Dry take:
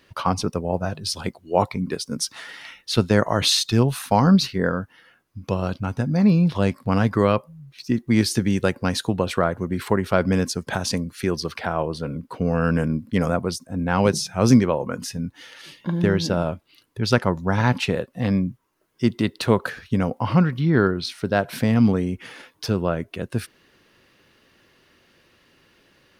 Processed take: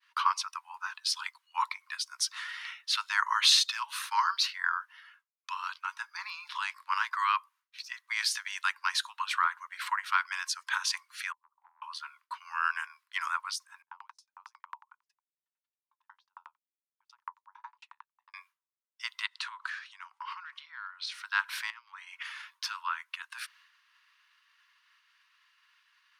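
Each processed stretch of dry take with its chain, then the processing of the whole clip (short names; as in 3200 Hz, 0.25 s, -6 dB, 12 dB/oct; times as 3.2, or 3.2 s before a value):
11.32–11.82 steep low-pass 860 Hz 48 dB/oct + compressor 8:1, threshold -35 dBFS
13.82–18.34 EQ curve 240 Hz 0 dB, 530 Hz +9 dB, 1600 Hz -22 dB + dB-ramp tremolo decaying 11 Hz, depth 39 dB
19.26–21.14 LPF 9400 Hz 24 dB/oct + bell 620 Hz +6.5 dB 0.4 oct + compressor 4:1, threshold -30 dBFS
21.7–22.23 high shelf 6200 Hz -11.5 dB + negative-ratio compressor -27 dBFS + three-band expander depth 40%
whole clip: steep high-pass 950 Hz 96 dB/oct; expander -55 dBFS; high shelf 7400 Hz -10.5 dB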